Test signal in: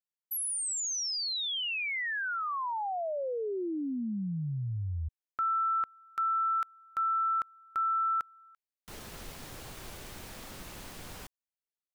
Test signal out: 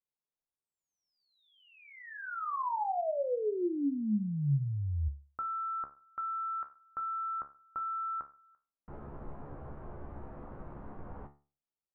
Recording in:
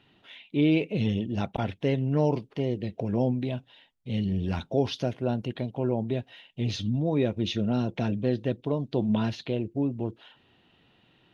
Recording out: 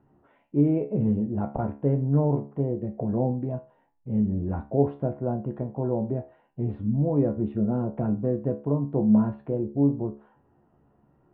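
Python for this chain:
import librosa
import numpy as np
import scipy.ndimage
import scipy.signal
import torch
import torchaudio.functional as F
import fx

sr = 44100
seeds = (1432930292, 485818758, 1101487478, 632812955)

y = scipy.signal.sosfilt(scipy.signal.butter(4, 1200.0, 'lowpass', fs=sr, output='sos'), x)
y = fx.low_shelf(y, sr, hz=140.0, db=3.5)
y = fx.comb_fb(y, sr, f0_hz=71.0, decay_s=0.36, harmonics='all', damping=0.4, mix_pct=80)
y = y * 10.0 ** (8.0 / 20.0)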